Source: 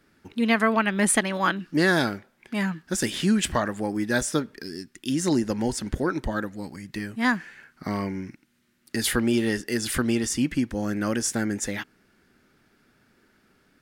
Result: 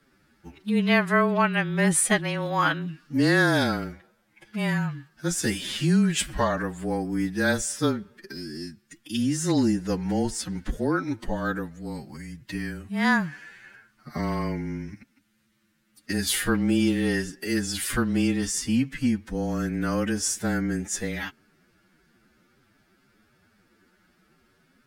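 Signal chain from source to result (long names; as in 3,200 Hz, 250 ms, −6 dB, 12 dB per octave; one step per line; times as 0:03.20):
phase-vocoder stretch with locked phases 1.8×
frequency shifter −24 Hz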